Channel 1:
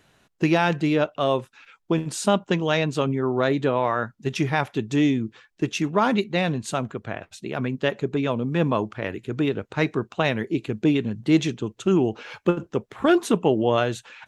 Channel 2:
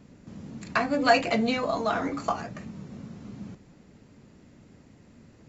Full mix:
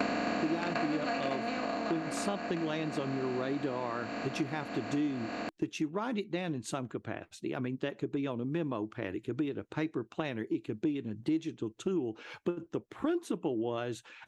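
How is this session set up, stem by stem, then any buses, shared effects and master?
−7.5 dB, 0.00 s, no send, no processing
−1.0 dB, 0.00 s, no send, compressor on every frequency bin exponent 0.2; noise gate with hold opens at −15 dBFS; automatic ducking −14 dB, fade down 1.80 s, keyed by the first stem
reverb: not used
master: parametric band 320 Hz +9.5 dB 0.39 octaves; downward compressor 4 to 1, threshold −31 dBFS, peak gain reduction 16 dB

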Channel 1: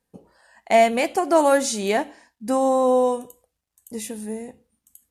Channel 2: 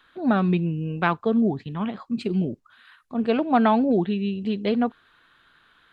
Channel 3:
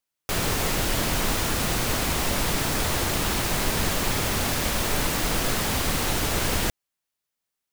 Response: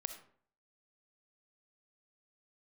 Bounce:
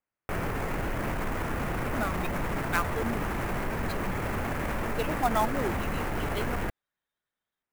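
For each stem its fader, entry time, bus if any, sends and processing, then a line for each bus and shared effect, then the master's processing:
muted
−0.5 dB, 1.70 s, no send, spectral dynamics exaggerated over time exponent 2; high-pass filter 900 Hz 6 dB per octave
+1.0 dB, 0.00 s, no send, low-pass filter 2,200 Hz 24 dB per octave; brickwall limiter −23.5 dBFS, peak gain reduction 9.5 dB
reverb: not used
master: converter with an unsteady clock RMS 0.025 ms

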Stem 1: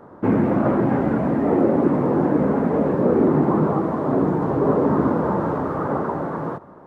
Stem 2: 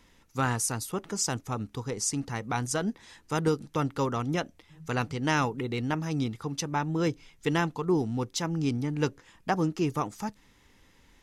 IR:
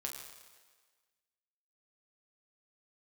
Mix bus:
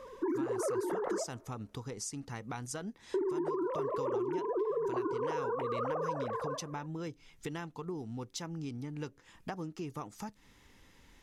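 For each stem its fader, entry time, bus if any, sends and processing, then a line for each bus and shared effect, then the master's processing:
−2.0 dB, 0.00 s, muted 0:01.24–0:03.14, send −22.5 dB, three sine waves on the formant tracks; automatic ducking −7 dB, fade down 0.25 s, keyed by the second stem
−0.5 dB, 0.00 s, no send, downward compressor 4 to 1, threshold −39 dBFS, peak gain reduction 15.5 dB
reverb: on, RT60 1.5 s, pre-delay 7 ms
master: downward compressor 12 to 1, threshold −30 dBFS, peak gain reduction 11.5 dB

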